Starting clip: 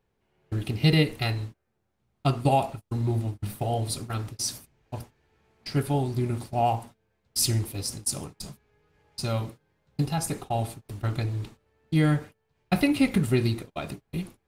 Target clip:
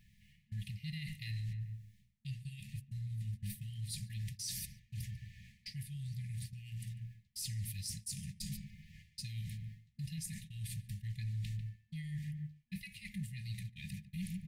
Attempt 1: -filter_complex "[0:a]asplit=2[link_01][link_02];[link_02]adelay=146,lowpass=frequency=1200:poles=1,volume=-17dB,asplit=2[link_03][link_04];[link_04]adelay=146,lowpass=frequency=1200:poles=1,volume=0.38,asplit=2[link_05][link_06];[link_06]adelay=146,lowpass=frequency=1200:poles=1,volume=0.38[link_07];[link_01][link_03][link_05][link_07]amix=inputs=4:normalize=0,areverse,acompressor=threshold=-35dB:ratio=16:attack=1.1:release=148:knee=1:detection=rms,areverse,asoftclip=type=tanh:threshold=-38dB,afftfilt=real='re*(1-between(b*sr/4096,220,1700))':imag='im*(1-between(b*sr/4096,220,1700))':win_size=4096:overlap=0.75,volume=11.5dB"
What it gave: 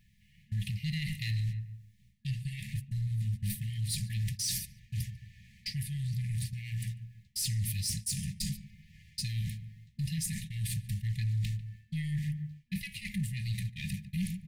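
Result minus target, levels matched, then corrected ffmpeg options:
downward compressor: peak gain reduction −11 dB
-filter_complex "[0:a]asplit=2[link_01][link_02];[link_02]adelay=146,lowpass=frequency=1200:poles=1,volume=-17dB,asplit=2[link_03][link_04];[link_04]adelay=146,lowpass=frequency=1200:poles=1,volume=0.38,asplit=2[link_05][link_06];[link_06]adelay=146,lowpass=frequency=1200:poles=1,volume=0.38[link_07];[link_01][link_03][link_05][link_07]amix=inputs=4:normalize=0,areverse,acompressor=threshold=-46.5dB:ratio=16:attack=1.1:release=148:knee=1:detection=rms,areverse,asoftclip=type=tanh:threshold=-38dB,afftfilt=real='re*(1-between(b*sr/4096,220,1700))':imag='im*(1-between(b*sr/4096,220,1700))':win_size=4096:overlap=0.75,volume=11.5dB"

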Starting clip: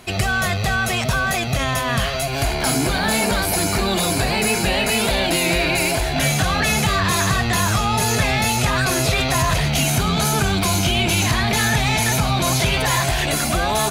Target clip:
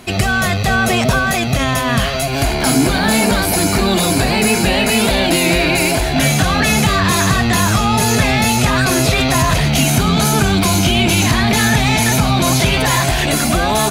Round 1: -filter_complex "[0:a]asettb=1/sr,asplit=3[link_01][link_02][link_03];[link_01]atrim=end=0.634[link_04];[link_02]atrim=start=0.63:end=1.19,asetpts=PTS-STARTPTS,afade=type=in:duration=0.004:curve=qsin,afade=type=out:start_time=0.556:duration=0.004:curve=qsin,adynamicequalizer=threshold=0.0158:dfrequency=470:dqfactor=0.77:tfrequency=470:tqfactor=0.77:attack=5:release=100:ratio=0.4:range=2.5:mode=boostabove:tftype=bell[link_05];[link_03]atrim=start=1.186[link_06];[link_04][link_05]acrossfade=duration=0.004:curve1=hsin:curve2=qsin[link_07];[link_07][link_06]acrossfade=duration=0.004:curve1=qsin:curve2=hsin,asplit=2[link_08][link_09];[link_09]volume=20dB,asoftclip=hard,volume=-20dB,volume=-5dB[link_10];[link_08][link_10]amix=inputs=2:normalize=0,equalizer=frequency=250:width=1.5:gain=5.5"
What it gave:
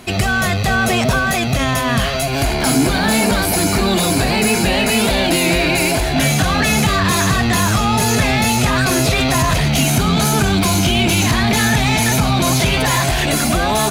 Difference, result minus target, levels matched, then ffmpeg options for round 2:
gain into a clipping stage and back: distortion +36 dB
-filter_complex "[0:a]asettb=1/sr,asplit=3[link_01][link_02][link_03];[link_01]atrim=end=0.634[link_04];[link_02]atrim=start=0.63:end=1.19,asetpts=PTS-STARTPTS,afade=type=in:duration=0.004:curve=qsin,afade=type=out:start_time=0.556:duration=0.004:curve=qsin,adynamicequalizer=threshold=0.0158:dfrequency=470:dqfactor=0.77:tfrequency=470:tqfactor=0.77:attack=5:release=100:ratio=0.4:range=2.5:mode=boostabove:tftype=bell[link_05];[link_03]atrim=start=1.186[link_06];[link_04][link_05]acrossfade=duration=0.004:curve1=hsin:curve2=qsin[link_07];[link_07][link_06]acrossfade=duration=0.004:curve1=qsin:curve2=hsin,asplit=2[link_08][link_09];[link_09]volume=8dB,asoftclip=hard,volume=-8dB,volume=-5dB[link_10];[link_08][link_10]amix=inputs=2:normalize=0,equalizer=frequency=250:width=1.5:gain=5.5"

